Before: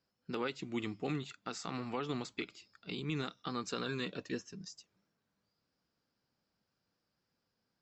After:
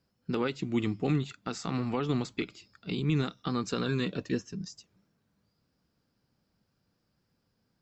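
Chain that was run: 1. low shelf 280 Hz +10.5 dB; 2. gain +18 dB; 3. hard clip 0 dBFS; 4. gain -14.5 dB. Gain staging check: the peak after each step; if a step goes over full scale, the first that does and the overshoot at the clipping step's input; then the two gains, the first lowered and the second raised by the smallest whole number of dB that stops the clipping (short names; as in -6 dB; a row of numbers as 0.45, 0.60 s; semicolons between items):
-20.5, -2.5, -2.5, -17.0 dBFS; no overload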